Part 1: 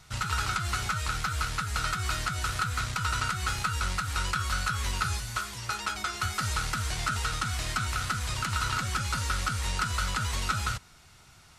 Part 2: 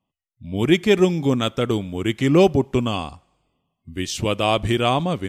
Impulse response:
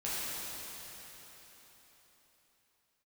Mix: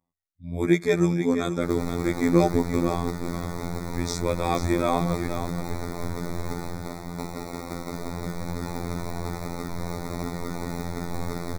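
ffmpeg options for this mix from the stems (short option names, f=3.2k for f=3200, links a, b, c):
-filter_complex "[0:a]alimiter=limit=-22dB:level=0:latency=1,aeval=exprs='val(0)*sin(2*PI*62*n/s)':c=same,acrusher=samples=27:mix=1:aa=0.000001,adelay=1500,volume=2.5dB,asplit=2[a][b];[b]volume=-5dB[c];[1:a]volume=-1dB,asplit=2[d][e];[e]volume=-9dB[f];[2:a]atrim=start_sample=2205[g];[c][g]afir=irnorm=-1:irlink=0[h];[f]aecho=0:1:478:1[i];[a][d][h][i]amix=inputs=4:normalize=0,afftfilt=real='hypot(re,im)*cos(PI*b)':imag='0':win_size=2048:overlap=0.75,asuperstop=centerf=2900:order=8:qfactor=2.5"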